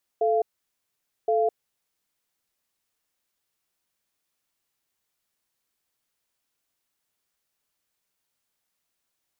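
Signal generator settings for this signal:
tone pair in a cadence 438 Hz, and 689 Hz, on 0.21 s, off 0.86 s, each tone −22 dBFS 1.69 s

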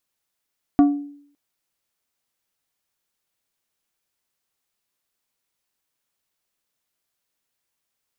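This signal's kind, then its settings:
struck glass plate, length 0.56 s, lowest mode 287 Hz, decay 0.62 s, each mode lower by 10 dB, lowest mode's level −8 dB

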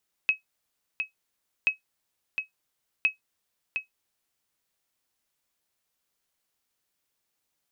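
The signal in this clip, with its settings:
ping with an echo 2,560 Hz, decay 0.13 s, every 1.38 s, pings 3, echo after 0.71 s, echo −7 dB −13.5 dBFS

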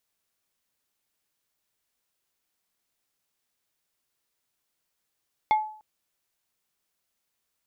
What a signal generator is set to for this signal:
struck wood plate, length 0.30 s, lowest mode 860 Hz, decay 0.50 s, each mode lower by 10 dB, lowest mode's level −15.5 dB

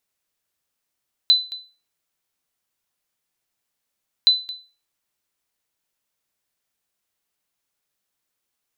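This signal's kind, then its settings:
ping with an echo 4,010 Hz, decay 0.34 s, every 2.97 s, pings 2, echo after 0.22 s, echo −18 dB −7 dBFS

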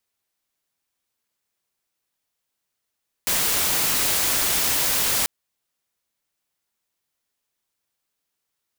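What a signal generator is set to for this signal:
noise white, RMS −21.5 dBFS 1.99 s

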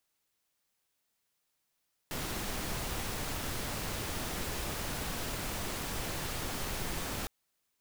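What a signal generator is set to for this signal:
noise pink, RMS −36.5 dBFS 5.16 s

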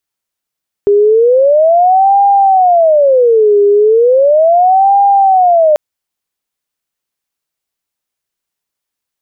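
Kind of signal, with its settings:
siren wail 406–801 Hz 0.36 per second sine −4.5 dBFS 4.89 s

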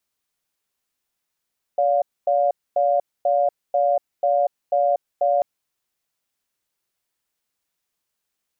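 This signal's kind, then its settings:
tone pair in a cadence 573 Hz, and 708 Hz, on 0.24 s, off 0.25 s, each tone −18.5 dBFS 3.64 s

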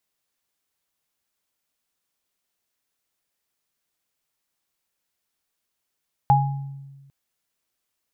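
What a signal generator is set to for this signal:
inharmonic partials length 0.80 s, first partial 138 Hz, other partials 827 Hz, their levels 5 dB, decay 1.44 s, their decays 0.50 s, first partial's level −16 dB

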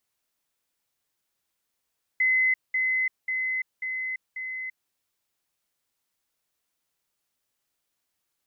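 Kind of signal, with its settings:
level staircase 2,040 Hz −19 dBFS, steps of −3 dB, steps 5, 0.34 s 0.20 s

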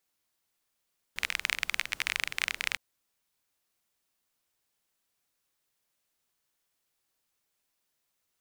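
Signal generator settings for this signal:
rain-like ticks over hiss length 1.61 s, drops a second 26, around 2,200 Hz, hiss −20.5 dB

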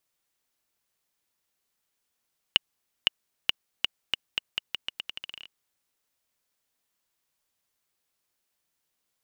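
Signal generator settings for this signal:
bouncing ball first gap 0.51 s, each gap 0.83, 2,900 Hz, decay 15 ms −3 dBFS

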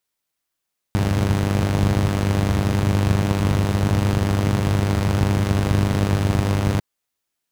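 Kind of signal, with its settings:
pulse-train model of a four-cylinder engine, steady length 5.85 s, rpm 3,000, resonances 82/120 Hz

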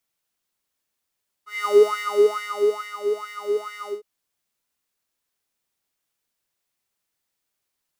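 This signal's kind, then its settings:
subtractive patch with filter wobble G#4, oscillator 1 square, oscillator 2 sine, interval +12 semitones, oscillator 2 level −16.5 dB, sub −8 dB, noise −30 dB, filter highpass, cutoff 740 Hz, Q 8.4, filter envelope 0.5 octaves, attack 199 ms, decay 1.32 s, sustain −10 dB, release 0.15 s, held 2.41 s, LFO 2.3 Hz, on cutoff 1.1 octaves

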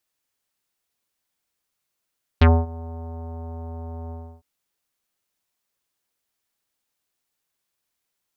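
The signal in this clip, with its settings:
subtractive voice square E2 24 dB per octave, low-pass 860 Hz, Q 1.8, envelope 2.5 octaves, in 0.08 s, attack 8.4 ms, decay 0.24 s, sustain −23 dB, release 0.31 s, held 1.70 s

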